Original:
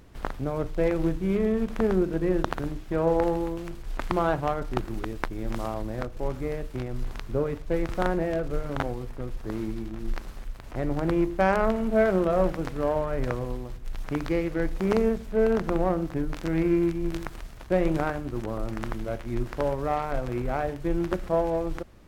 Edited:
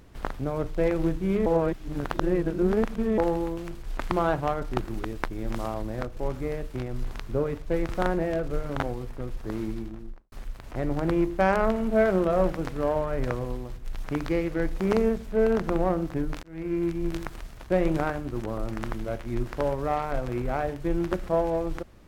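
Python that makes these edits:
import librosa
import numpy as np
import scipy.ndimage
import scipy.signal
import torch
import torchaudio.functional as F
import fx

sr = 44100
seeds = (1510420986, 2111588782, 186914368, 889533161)

y = fx.studio_fade_out(x, sr, start_s=9.72, length_s=0.6)
y = fx.edit(y, sr, fx.reverse_span(start_s=1.46, length_s=1.72),
    fx.fade_in_span(start_s=16.43, length_s=0.57), tone=tone)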